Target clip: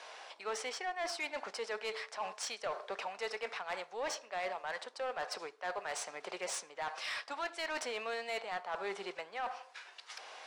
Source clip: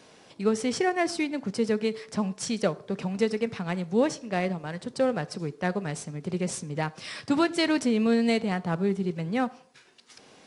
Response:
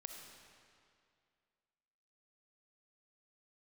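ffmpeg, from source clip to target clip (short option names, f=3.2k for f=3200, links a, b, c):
-af "highpass=f=690:w=0.5412,highpass=f=690:w=1.3066,aemphasis=mode=reproduction:type=bsi,areverse,acompressor=threshold=-42dB:ratio=5,areverse,asoftclip=type=tanh:threshold=-38.5dB,volume=8dB"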